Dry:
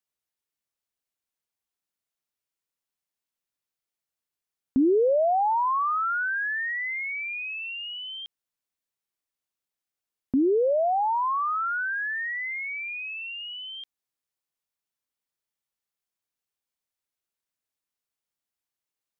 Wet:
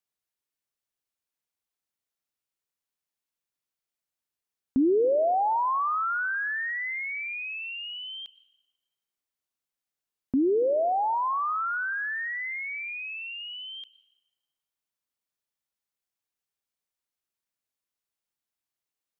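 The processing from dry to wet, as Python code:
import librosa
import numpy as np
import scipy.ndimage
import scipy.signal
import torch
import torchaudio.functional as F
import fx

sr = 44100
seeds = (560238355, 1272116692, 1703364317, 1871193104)

y = fx.rev_plate(x, sr, seeds[0], rt60_s=1.3, hf_ratio=0.8, predelay_ms=85, drr_db=18.5)
y = y * 10.0 ** (-1.5 / 20.0)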